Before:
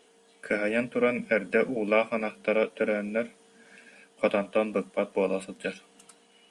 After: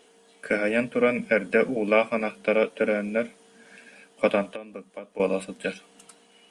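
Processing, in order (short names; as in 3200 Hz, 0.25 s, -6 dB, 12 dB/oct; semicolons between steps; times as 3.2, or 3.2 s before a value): 4.49–5.2 compressor 10:1, threshold -38 dBFS, peak gain reduction 18.5 dB; gain +3 dB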